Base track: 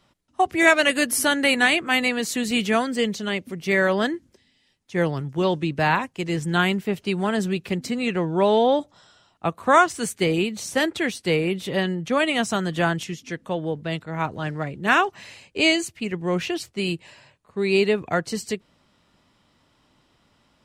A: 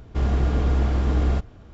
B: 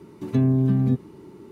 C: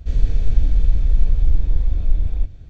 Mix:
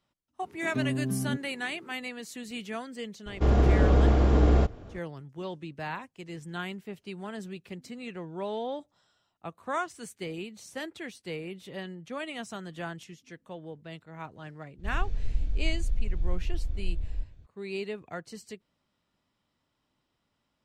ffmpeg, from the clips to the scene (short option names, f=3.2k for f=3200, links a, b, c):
-filter_complex "[0:a]volume=-15.5dB[a];[2:a]highpass=140[b];[1:a]equalizer=f=470:w=0.8:g=6.5[c];[b]atrim=end=1.51,asetpts=PTS-STARTPTS,volume=-8.5dB,afade=t=in:d=0.004:c=hsin,afade=t=out:st=1.506:d=0.004:c=hsin,adelay=410[d];[c]atrim=end=1.73,asetpts=PTS-STARTPTS,volume=-1dB,afade=t=in:d=0.004:c=hsin,afade=t=out:st=1.726:d=0.004:c=hsin,adelay=3260[e];[3:a]atrim=end=2.69,asetpts=PTS-STARTPTS,volume=-13dB,afade=t=in:d=0.02,afade=t=out:st=2.67:d=0.02,adelay=14780[f];[a][d][e][f]amix=inputs=4:normalize=0"